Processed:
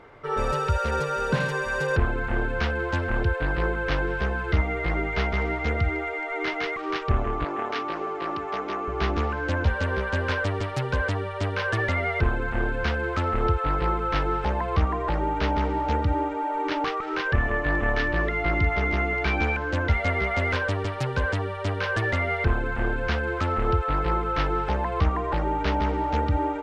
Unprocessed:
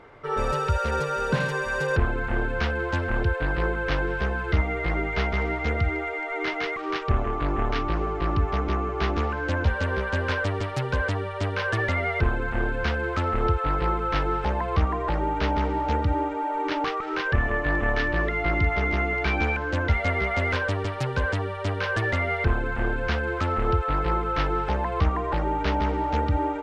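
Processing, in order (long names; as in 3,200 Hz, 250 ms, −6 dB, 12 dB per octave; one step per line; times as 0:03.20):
0:07.44–0:08.88: high-pass filter 340 Hz 12 dB per octave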